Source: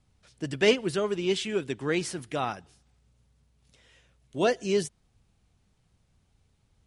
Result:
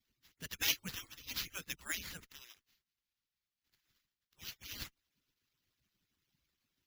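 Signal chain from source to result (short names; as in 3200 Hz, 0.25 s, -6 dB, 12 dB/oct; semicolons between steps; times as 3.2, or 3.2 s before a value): median-filter separation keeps percussive; 2.2–4.56 differentiator; spectral gate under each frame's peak -10 dB weak; sample-and-hold 5×; passive tone stack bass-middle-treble 6-0-2; gain +16 dB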